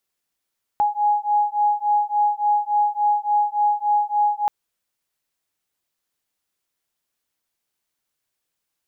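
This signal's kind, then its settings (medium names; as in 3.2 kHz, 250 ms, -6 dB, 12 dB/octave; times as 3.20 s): beating tones 830 Hz, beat 3.5 Hz, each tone -20 dBFS 3.68 s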